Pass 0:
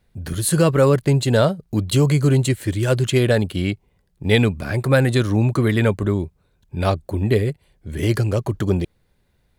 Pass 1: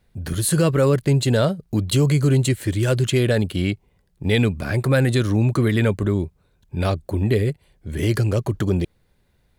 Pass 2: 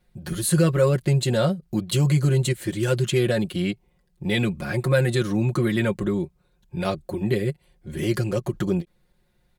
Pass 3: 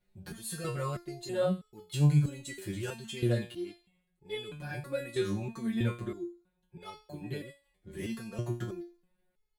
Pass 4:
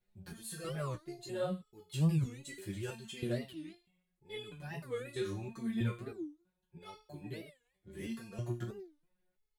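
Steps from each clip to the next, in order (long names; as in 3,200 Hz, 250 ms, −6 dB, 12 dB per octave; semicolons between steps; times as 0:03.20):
dynamic equaliser 880 Hz, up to −4 dB, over −31 dBFS, Q 1.3; in parallel at +1.5 dB: brickwall limiter −13 dBFS, peak gain reduction 10.5 dB; on the sum: level −6 dB
comb filter 5.6 ms, depth 78%; every ending faded ahead of time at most 590 dB per second; level −4.5 dB
delay with a high-pass on its return 85 ms, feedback 43%, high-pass 3,000 Hz, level −16 dB; step-sequenced resonator 3.1 Hz 96–430 Hz
flanger 0.7 Hz, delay 7.7 ms, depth 8.8 ms, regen −24%; wow of a warped record 45 rpm, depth 250 cents; level −1.5 dB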